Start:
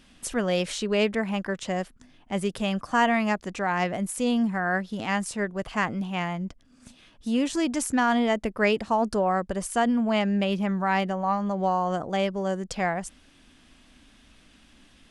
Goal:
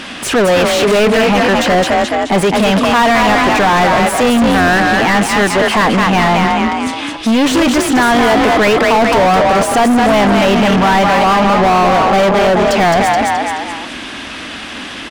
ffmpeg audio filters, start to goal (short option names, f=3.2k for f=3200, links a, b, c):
-filter_complex "[0:a]asplit=5[a][b][c][d][e];[b]adelay=213,afreqshift=34,volume=-6.5dB[f];[c]adelay=426,afreqshift=68,volume=-15.1dB[g];[d]adelay=639,afreqshift=102,volume=-23.8dB[h];[e]adelay=852,afreqshift=136,volume=-32.4dB[i];[a][f][g][h][i]amix=inputs=5:normalize=0,asplit=2[j][k];[k]highpass=f=720:p=1,volume=38dB,asoftclip=type=tanh:threshold=-7.5dB[l];[j][l]amix=inputs=2:normalize=0,lowpass=f=2.1k:p=1,volume=-6dB,volume=4.5dB"